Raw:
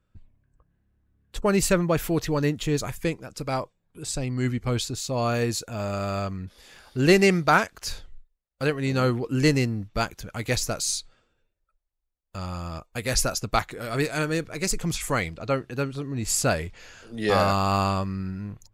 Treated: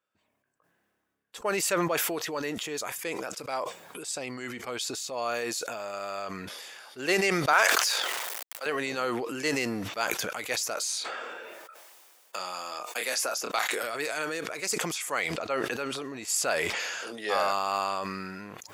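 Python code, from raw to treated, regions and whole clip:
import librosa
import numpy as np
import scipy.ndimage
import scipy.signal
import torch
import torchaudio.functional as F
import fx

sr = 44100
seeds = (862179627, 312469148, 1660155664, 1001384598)

y = fx.chain(x, sr, fx.law_mismatch(coded='mu'),
    fx.highpass(hz=480.0, slope=12),
    fx.sustainer(db_per_s=64.0), at=(7.53, 8.66))
y = fx.chain(y, sr, fx.highpass(hz=240.0, slope=12),
    fx.doubler(ms=27.0, db=-8.5),
    fx.band_squash(depth_pct=70), at=(10.75, 13.83))
y = scipy.signal.sosfilt(scipy.signal.butter(2, 540.0, 'highpass', fs=sr, output='sos'), y)
y = fx.notch(y, sr, hz=4100.0, q=17.0)
y = fx.sustainer(y, sr, db_per_s=22.0)
y = F.gain(torch.from_numpy(y), -3.5).numpy()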